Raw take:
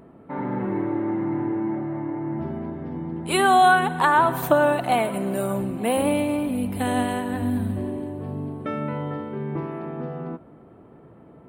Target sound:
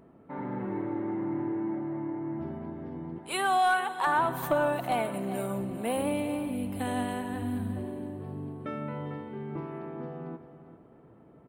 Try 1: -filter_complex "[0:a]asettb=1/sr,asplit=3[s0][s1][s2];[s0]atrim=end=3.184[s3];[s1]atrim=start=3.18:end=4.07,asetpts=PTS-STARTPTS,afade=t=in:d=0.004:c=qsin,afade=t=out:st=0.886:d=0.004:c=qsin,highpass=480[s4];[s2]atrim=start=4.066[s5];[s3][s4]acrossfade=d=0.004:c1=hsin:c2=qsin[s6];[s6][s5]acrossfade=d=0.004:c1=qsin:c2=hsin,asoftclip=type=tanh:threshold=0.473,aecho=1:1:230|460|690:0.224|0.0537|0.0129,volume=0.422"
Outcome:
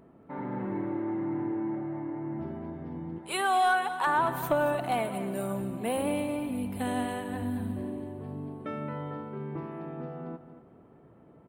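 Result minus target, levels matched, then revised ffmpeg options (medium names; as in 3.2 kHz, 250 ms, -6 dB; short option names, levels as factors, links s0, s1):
echo 167 ms early
-filter_complex "[0:a]asettb=1/sr,asplit=3[s0][s1][s2];[s0]atrim=end=3.184[s3];[s1]atrim=start=3.18:end=4.07,asetpts=PTS-STARTPTS,afade=t=in:d=0.004:c=qsin,afade=t=out:st=0.886:d=0.004:c=qsin,highpass=480[s4];[s2]atrim=start=4.066[s5];[s3][s4]acrossfade=d=0.004:c1=hsin:c2=qsin[s6];[s6][s5]acrossfade=d=0.004:c1=qsin:c2=hsin,asoftclip=type=tanh:threshold=0.473,aecho=1:1:397|794|1191:0.224|0.0537|0.0129,volume=0.422"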